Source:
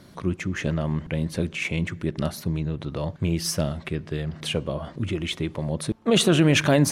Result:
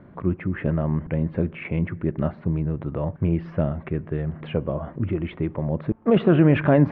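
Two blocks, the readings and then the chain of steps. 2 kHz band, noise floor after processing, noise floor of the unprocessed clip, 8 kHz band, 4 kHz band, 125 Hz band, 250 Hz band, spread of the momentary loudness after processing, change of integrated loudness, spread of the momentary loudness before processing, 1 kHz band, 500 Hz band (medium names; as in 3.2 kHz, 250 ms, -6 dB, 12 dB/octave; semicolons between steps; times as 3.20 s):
-4.5 dB, -45 dBFS, -47 dBFS, under -40 dB, under -15 dB, +2.5 dB, +2.5 dB, 11 LU, +1.0 dB, 12 LU, +1.0 dB, +2.0 dB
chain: Bessel low-pass 1.4 kHz, order 6; trim +2.5 dB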